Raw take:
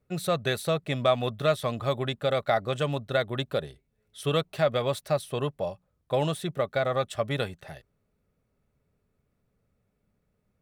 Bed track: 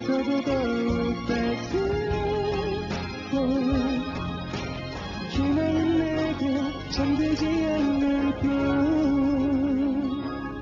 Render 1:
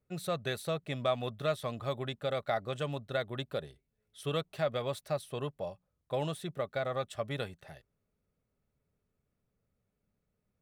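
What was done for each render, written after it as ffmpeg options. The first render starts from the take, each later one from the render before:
-af "volume=-7.5dB"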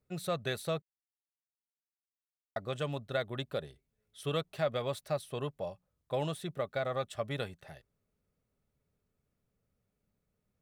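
-filter_complex "[0:a]asplit=3[a][b][c];[a]atrim=end=0.82,asetpts=PTS-STARTPTS,afade=t=out:st=0.816:d=0.004:c=hsin[d];[b]atrim=start=0.82:end=2.56,asetpts=PTS-STARTPTS,volume=0[e];[c]atrim=start=2.56,asetpts=PTS-STARTPTS,afade=t=in:d=0.004:c=hsin[f];[d][e][f]concat=n=3:v=0:a=1"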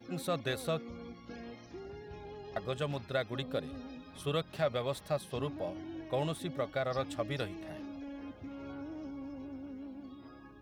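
-filter_complex "[1:a]volume=-21dB[a];[0:a][a]amix=inputs=2:normalize=0"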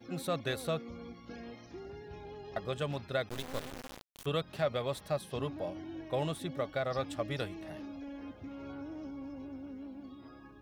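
-filter_complex "[0:a]asettb=1/sr,asplit=3[a][b][c];[a]atrim=end=3.294[d];[b]atrim=start=3.29:end=4.26,asetpts=PTS-STARTPTS,afade=t=in:d=0.004:c=qsin,afade=t=out:st=0.966:d=0.004:c=qsin,acrusher=bits=4:dc=4:mix=0:aa=0.000001[e];[c]atrim=start=4.256[f];[d][e]acrossfade=d=0.004:c1=hsin:c2=qsin[g];[g][f]acrossfade=d=0.004:c1=qsin:c2=hsin"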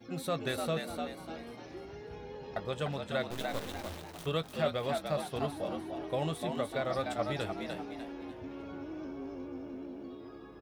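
-filter_complex "[0:a]asplit=2[a][b];[b]adelay=19,volume=-13.5dB[c];[a][c]amix=inputs=2:normalize=0,asplit=6[d][e][f][g][h][i];[e]adelay=298,afreqshift=82,volume=-5dB[j];[f]adelay=596,afreqshift=164,volume=-13.6dB[k];[g]adelay=894,afreqshift=246,volume=-22.3dB[l];[h]adelay=1192,afreqshift=328,volume=-30.9dB[m];[i]adelay=1490,afreqshift=410,volume=-39.5dB[n];[d][j][k][l][m][n]amix=inputs=6:normalize=0"

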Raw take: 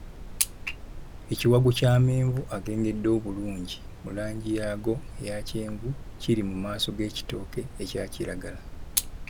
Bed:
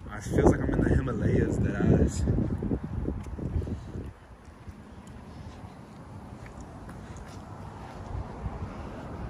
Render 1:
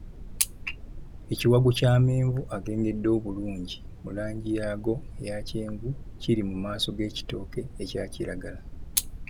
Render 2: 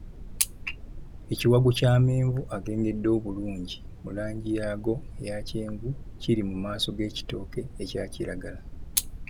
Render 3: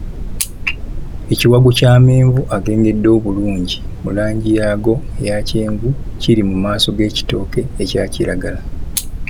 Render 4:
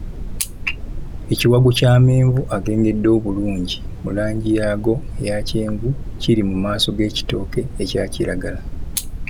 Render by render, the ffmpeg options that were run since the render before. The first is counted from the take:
-af "afftdn=nr=10:nf=-43"
-af anull
-filter_complex "[0:a]asplit=2[a][b];[b]acompressor=threshold=-34dB:ratio=6,volume=-2.5dB[c];[a][c]amix=inputs=2:normalize=0,alimiter=level_in=13dB:limit=-1dB:release=50:level=0:latency=1"
-af "volume=-4dB"

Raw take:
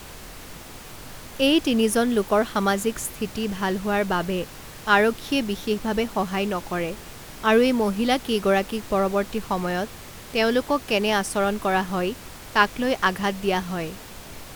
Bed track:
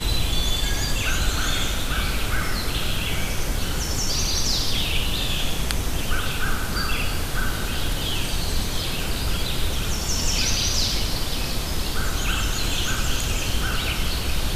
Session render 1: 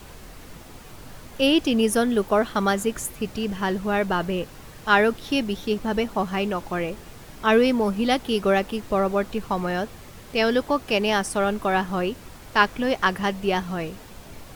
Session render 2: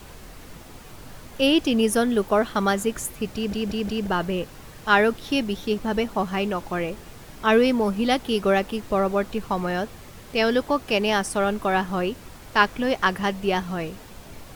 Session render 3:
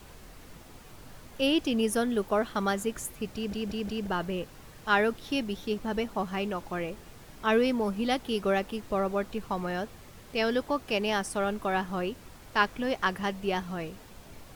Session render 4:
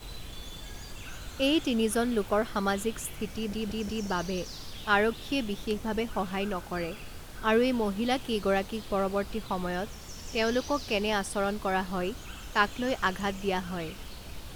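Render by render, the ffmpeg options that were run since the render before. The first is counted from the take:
-af "afftdn=nr=6:nf=-41"
-filter_complex "[0:a]asplit=5[a][b][c][d][e];[a]atrim=end=3.532[f];[b]atrim=start=3.348:end=3.532[g];[c]atrim=start=3.348:end=3.532[h];[d]atrim=start=3.348:end=3.532[i];[e]atrim=start=4.068[j];[f][g]acrossfade=d=0.004:c1=hsin:c2=hsin[k];[k][h]acrossfade=d=0.004:c1=hsin:c2=hsin[l];[l][i]acrossfade=d=0.004:c1=hsin:c2=hsin[m];[m][j]acrossfade=d=0.004:c1=hsin:c2=hsin"
-af "volume=-6.5dB"
-filter_complex "[1:a]volume=-20dB[a];[0:a][a]amix=inputs=2:normalize=0"

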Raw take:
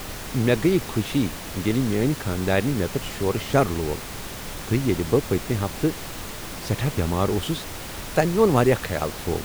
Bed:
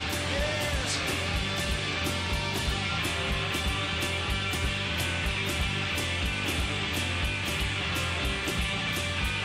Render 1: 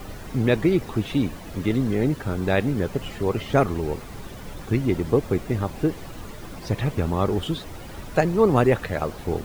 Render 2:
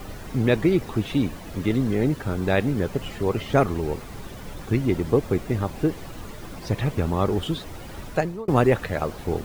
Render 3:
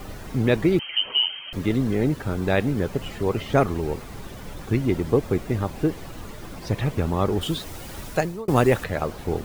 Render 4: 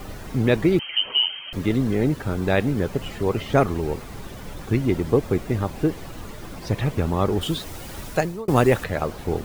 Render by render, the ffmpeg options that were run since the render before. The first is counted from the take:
-af "afftdn=nr=11:nf=-35"
-filter_complex "[0:a]asplit=2[a][b];[a]atrim=end=8.48,asetpts=PTS-STARTPTS,afade=t=out:st=8.07:d=0.41[c];[b]atrim=start=8.48,asetpts=PTS-STARTPTS,afade=t=in:d=0.004:c=hsin[d];[c][d]concat=n=2:v=0:a=1"
-filter_complex "[0:a]asettb=1/sr,asplit=3[a][b][c];[a]atrim=end=0.794[d];[b]atrim=start=0.79:end=1.53,asetpts=PTS-STARTPTS,afade=t=in:d=0.004:c=qsin,afade=t=out:st=0.736:d=0.004:c=qsin,lowpass=f=2.7k:t=q:w=0.5098,lowpass=f=2.7k:t=q:w=0.6013,lowpass=f=2.7k:t=q:w=0.9,lowpass=f=2.7k:t=q:w=2.563,afreqshift=-3200[e];[c]atrim=start=1.526[f];[d][e]acrossfade=d=0.004:c1=hsin:c2=qsin[g];[g][f]acrossfade=d=0.004:c1=qsin:c2=hsin,asettb=1/sr,asplit=3[h][i][j];[h]atrim=end=7.414[k];[i]atrim=start=7.41:end=8.84,asetpts=PTS-STARTPTS,afade=t=in:d=0.004:c=qsin,afade=t=out:st=1.426:d=0.004:c=qsin,highshelf=f=4.2k:g=8.5[l];[j]atrim=start=8.836[m];[k][l]acrossfade=d=0.004:c1=hsin:c2=qsin[n];[n][m]acrossfade=d=0.004:c1=qsin:c2=hsin"
-af "volume=1dB"

